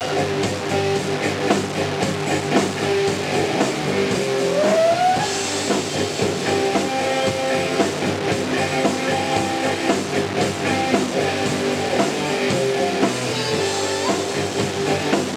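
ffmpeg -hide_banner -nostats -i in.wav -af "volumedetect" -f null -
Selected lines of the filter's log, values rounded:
mean_volume: -20.3 dB
max_volume: -3.6 dB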